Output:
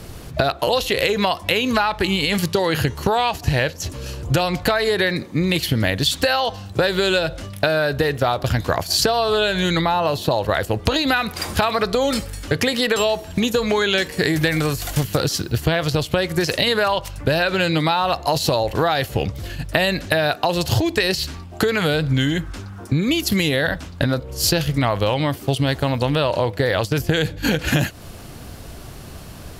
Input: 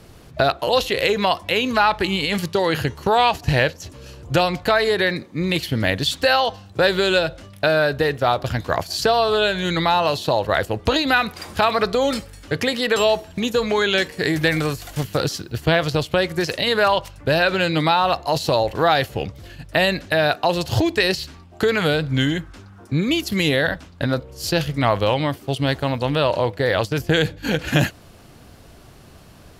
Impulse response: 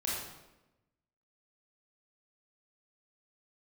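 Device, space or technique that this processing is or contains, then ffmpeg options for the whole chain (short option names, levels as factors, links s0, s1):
ASMR close-microphone chain: -filter_complex "[0:a]asettb=1/sr,asplit=3[s0][s1][s2];[s0]atrim=end=9.814[s3];[s1]atrim=start=9.81:end=10.31,asetpts=PTS-STARTPTS,afade=t=in:d=0.004:c=qsin,afade=t=out:st=0.496:d=0.004:c=qsin,equalizer=f=5900:t=o:w=2.9:g=-7.5[s4];[s2]atrim=start=10.306[s5];[s3][s4]acrossfade=d=0.004:c1=hsin:c2=qsin[s6];[s6][s5]acrossfade=d=0.004:c1=qsin:c2=hsin,lowshelf=f=110:g=4.5,acompressor=threshold=0.0708:ratio=6,highshelf=f=6700:g=5.5,volume=2.24"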